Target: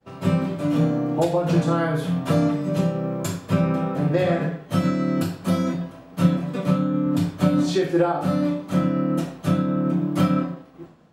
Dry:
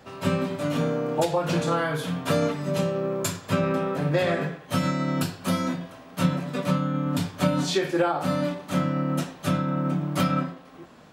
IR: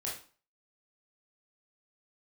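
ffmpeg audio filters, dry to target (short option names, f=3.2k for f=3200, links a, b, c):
-filter_complex "[0:a]agate=range=-33dB:threshold=-43dB:ratio=3:detection=peak,tiltshelf=f=680:g=4.5,asplit=2[a][b];[1:a]atrim=start_sample=2205,adelay=6[c];[b][c]afir=irnorm=-1:irlink=0,volume=-7dB[d];[a][d]amix=inputs=2:normalize=0"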